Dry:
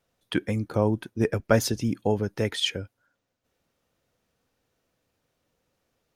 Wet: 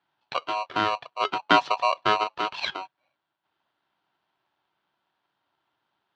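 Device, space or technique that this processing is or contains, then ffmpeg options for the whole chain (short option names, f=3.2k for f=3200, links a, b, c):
ring modulator pedal into a guitar cabinet: -filter_complex "[0:a]asettb=1/sr,asplit=3[a][b][c];[a]atrim=end=1.444[d];[b]atrim=start=1.44:end=2.24,asetpts=PTS-STARTPTS,afade=t=in:d=0.004:c=qsin,afade=t=out:st=0.796:d=0.004:c=qsin,tiltshelf=f=920:g=5.5[e];[c]atrim=start=2.236[f];[d][e]acrossfade=d=0.004:c1=hsin:c2=qsin[g];[g][f]acrossfade=d=0.004:c1=qsin:c2=hsin,aeval=exprs='val(0)*sgn(sin(2*PI*850*n/s))':c=same,highpass=95,equalizer=f=140:t=q:w=4:g=4,equalizer=f=480:t=q:w=4:g=-5,equalizer=f=890:t=q:w=4:g=6,equalizer=f=1.6k:t=q:w=4:g=6,equalizer=f=2.3k:t=q:w=4:g=-3,equalizer=f=3.3k:t=q:w=4:g=6,lowpass=f=4.2k:w=0.5412,lowpass=f=4.2k:w=1.3066,volume=-3.5dB"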